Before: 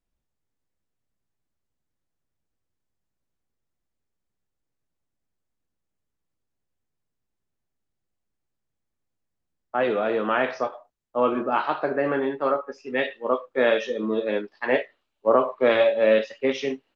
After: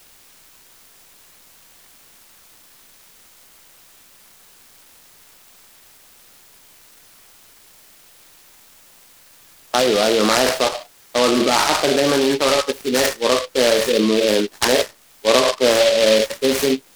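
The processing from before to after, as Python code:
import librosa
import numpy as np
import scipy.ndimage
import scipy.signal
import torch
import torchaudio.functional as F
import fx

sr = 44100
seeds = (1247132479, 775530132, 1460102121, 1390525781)

p1 = fx.dmg_noise_colour(x, sr, seeds[0], colour='blue', level_db=-58.0)
p2 = fx.env_lowpass_down(p1, sr, base_hz=2000.0, full_db=-18.5)
p3 = fx.over_compress(p2, sr, threshold_db=-29.0, ratio=-1.0)
p4 = p2 + (p3 * librosa.db_to_amplitude(3.0))
p5 = fx.noise_mod_delay(p4, sr, seeds[1], noise_hz=3200.0, depth_ms=0.11)
y = p5 * librosa.db_to_amplitude(2.5)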